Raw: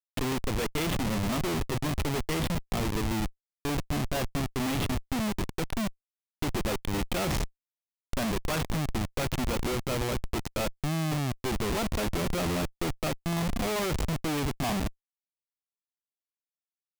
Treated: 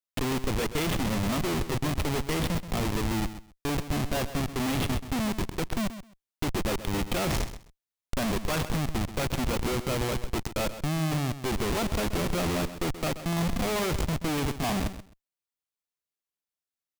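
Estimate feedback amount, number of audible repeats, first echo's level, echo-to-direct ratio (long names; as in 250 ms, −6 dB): 17%, 2, −12.5 dB, −12.5 dB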